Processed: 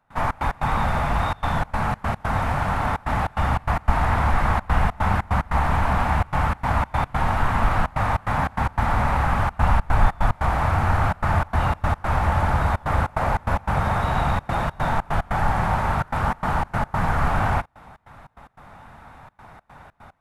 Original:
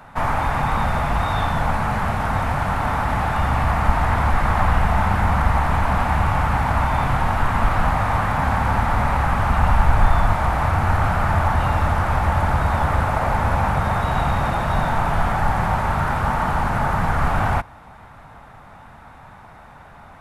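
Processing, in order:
gate pattern ".xx.x.xxxxxxx.xx" 147 BPM −24 dB
highs frequency-modulated by the lows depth 0.13 ms
level −1.5 dB

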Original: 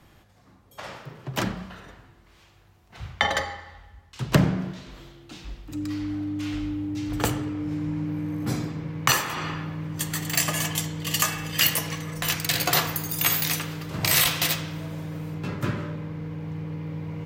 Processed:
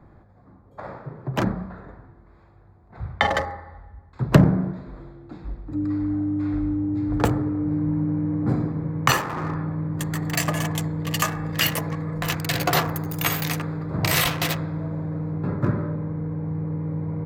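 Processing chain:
adaptive Wiener filter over 15 samples
high-shelf EQ 2,400 Hz −9.5 dB
level +5.5 dB

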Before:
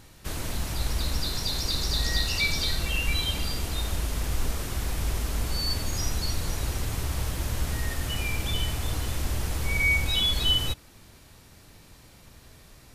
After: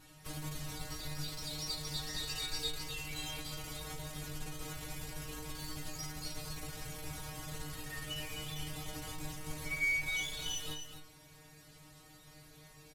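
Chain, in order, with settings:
0:02.22–0:03.04: comb filter 2.4 ms, depth 61%
in parallel at +2 dB: downward compressor, threshold −32 dBFS, peak gain reduction 13 dB
on the sum: asymmetric clip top −34 dBFS
stiff-string resonator 150 Hz, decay 0.36 s, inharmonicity 0.002
single-tap delay 255 ms −8 dB

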